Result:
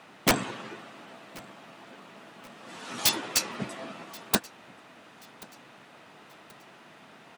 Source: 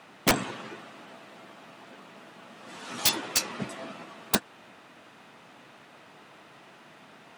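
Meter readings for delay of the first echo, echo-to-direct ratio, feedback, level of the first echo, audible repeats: 1.081 s, -23.0 dB, 39%, -23.5 dB, 2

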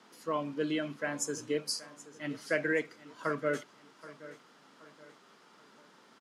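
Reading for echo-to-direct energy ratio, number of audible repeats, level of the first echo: -16.5 dB, 3, -17.5 dB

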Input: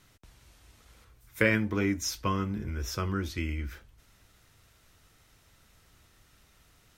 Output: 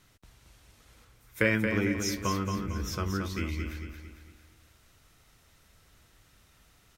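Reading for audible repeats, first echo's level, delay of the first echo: 5, -6.0 dB, 0.226 s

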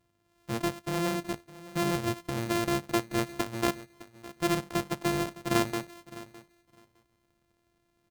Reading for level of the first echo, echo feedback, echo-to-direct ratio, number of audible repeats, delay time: -18.0 dB, 16%, -18.0 dB, 2, 0.61 s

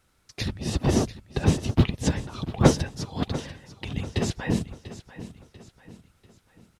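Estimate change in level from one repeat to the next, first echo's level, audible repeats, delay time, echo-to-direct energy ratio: -7.5 dB, -14.5 dB, 3, 0.692 s, -13.5 dB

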